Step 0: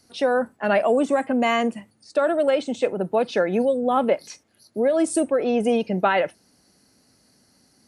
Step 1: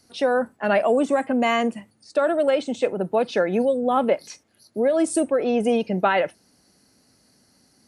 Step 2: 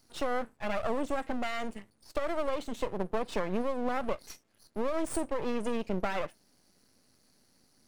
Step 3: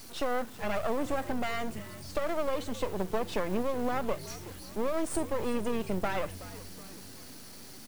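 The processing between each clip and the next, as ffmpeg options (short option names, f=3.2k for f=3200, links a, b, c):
-af anull
-af "acompressor=threshold=-21dB:ratio=6,aeval=exprs='max(val(0),0)':c=same,volume=-3dB"
-filter_complex "[0:a]aeval=exprs='val(0)+0.5*0.01*sgn(val(0))':c=same,asplit=6[a][b][c][d][e][f];[b]adelay=372,afreqshift=-94,volume=-16dB[g];[c]adelay=744,afreqshift=-188,volume=-21.5dB[h];[d]adelay=1116,afreqshift=-282,volume=-27dB[i];[e]adelay=1488,afreqshift=-376,volume=-32.5dB[j];[f]adelay=1860,afreqshift=-470,volume=-38.1dB[k];[a][g][h][i][j][k]amix=inputs=6:normalize=0"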